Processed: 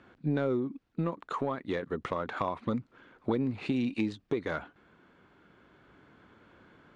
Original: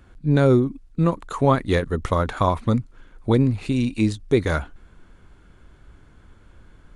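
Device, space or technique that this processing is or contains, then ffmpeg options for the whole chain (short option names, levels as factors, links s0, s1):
AM radio: -af "highpass=200,lowpass=3500,acompressor=threshold=0.0562:ratio=6,asoftclip=type=tanh:threshold=0.158,tremolo=f=0.3:d=0.29"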